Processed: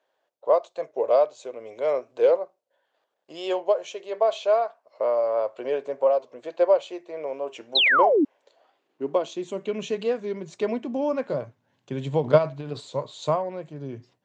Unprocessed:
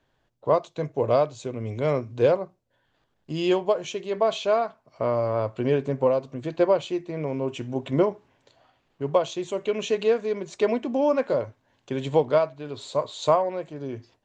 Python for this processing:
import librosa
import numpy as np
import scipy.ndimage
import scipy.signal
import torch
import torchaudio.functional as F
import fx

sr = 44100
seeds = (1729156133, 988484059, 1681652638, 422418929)

y = fx.transient(x, sr, attack_db=12, sustain_db=8, at=(12.23, 12.8), fade=0.02)
y = fx.filter_sweep_highpass(y, sr, from_hz=550.0, to_hz=140.0, start_s=8.36, end_s=9.98, q=2.2)
y = fx.spec_paint(y, sr, seeds[0], shape='fall', start_s=7.75, length_s=0.5, low_hz=260.0, high_hz=4300.0, level_db=-14.0)
y = fx.record_warp(y, sr, rpm=45.0, depth_cents=100.0)
y = y * librosa.db_to_amplitude(-4.5)